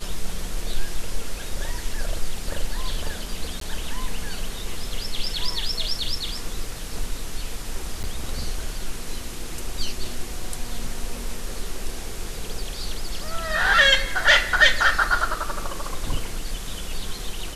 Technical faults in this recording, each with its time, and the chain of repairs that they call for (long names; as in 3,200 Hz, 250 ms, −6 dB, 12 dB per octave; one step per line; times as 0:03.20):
0:03.60–0:03.61: drop-out 13 ms
0:08.03–0:08.04: drop-out 8.9 ms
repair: repair the gap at 0:03.60, 13 ms
repair the gap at 0:08.03, 8.9 ms